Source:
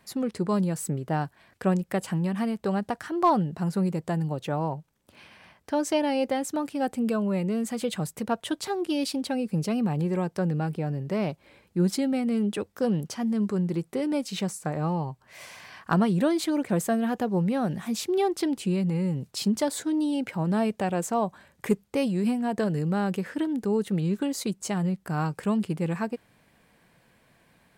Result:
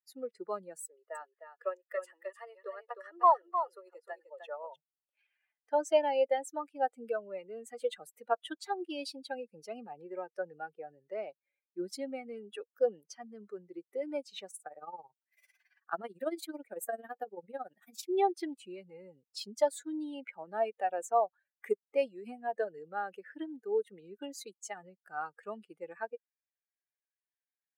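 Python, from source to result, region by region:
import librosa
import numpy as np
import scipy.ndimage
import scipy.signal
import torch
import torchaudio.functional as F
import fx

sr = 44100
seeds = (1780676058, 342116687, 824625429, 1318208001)

y = fx.chain(x, sr, fx.highpass(hz=410.0, slope=24),
    fx.notch_comb(f0_hz=780.0),
    fx.echo_single(ms=306, db=-4.5), at=(0.84, 4.76))
y = fx.chain(y, sr, fx.high_shelf(hz=11000.0, db=11.0),
    fx.tremolo(hz=18.0, depth=0.73), at=(14.5, 18.03))
y = fx.bin_expand(y, sr, power=2.0)
y = scipy.signal.sosfilt(scipy.signal.butter(4, 480.0, 'highpass', fs=sr, output='sos'), y)
y = fx.tilt_shelf(y, sr, db=6.0, hz=1400.0)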